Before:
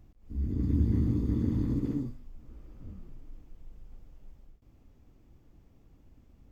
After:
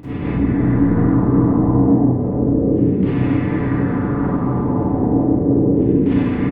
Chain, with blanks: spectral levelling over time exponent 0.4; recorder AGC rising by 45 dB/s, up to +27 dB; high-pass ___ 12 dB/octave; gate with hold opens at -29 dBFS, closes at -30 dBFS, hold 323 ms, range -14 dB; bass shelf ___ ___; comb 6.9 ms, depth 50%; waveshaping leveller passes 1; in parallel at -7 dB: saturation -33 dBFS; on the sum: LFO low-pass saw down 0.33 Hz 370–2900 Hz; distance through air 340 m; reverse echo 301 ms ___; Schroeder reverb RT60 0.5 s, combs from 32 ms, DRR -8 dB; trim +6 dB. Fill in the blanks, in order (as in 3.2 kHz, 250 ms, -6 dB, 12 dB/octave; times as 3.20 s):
76 Hz, 310 Hz, -11.5 dB, -17.5 dB